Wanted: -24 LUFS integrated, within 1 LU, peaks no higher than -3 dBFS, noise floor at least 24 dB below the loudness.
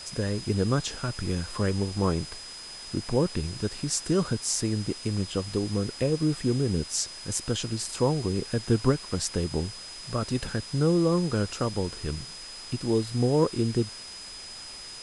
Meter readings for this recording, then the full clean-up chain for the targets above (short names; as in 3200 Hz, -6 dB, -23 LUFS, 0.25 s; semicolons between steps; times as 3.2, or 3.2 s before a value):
steady tone 5000 Hz; tone level -41 dBFS; noise floor -42 dBFS; noise floor target -52 dBFS; loudness -28.0 LUFS; peak -9.5 dBFS; loudness target -24.0 LUFS
-> notch 5000 Hz, Q 30; denoiser 10 dB, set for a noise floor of -42 dBFS; gain +4 dB